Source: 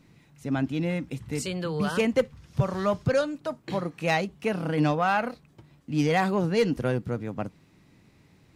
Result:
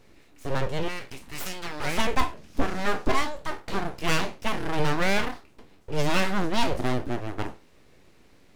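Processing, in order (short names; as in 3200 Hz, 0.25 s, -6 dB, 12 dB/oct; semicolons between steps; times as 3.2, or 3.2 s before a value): spectral trails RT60 0.31 s; 0.88–1.98 resonant low shelf 560 Hz -7.5 dB, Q 3; full-wave rectifier; gain +2.5 dB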